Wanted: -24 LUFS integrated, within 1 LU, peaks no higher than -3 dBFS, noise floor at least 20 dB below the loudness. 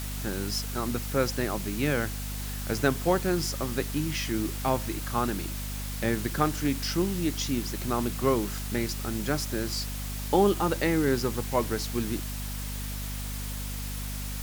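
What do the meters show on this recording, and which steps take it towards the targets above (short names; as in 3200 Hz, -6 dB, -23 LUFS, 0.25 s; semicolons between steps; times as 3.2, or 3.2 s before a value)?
hum 50 Hz; harmonics up to 250 Hz; hum level -33 dBFS; noise floor -34 dBFS; noise floor target -49 dBFS; loudness -29.0 LUFS; peak -9.0 dBFS; loudness target -24.0 LUFS
-> de-hum 50 Hz, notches 5; noise print and reduce 15 dB; gain +5 dB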